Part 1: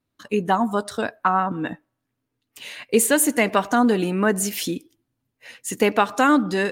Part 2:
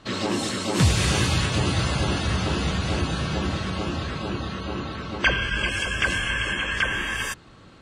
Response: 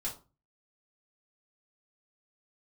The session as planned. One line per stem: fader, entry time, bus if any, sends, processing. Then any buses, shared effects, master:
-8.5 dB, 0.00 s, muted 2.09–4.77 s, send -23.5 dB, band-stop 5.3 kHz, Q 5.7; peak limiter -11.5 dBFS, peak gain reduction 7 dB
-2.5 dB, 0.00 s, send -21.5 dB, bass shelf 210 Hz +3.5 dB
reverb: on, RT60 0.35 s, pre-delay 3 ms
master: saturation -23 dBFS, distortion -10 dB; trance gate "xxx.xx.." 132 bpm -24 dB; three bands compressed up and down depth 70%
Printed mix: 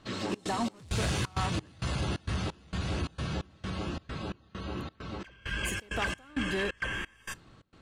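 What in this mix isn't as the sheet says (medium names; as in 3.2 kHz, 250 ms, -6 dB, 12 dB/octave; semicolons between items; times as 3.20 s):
stem 2 -2.5 dB -> -8.5 dB; master: missing three bands compressed up and down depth 70%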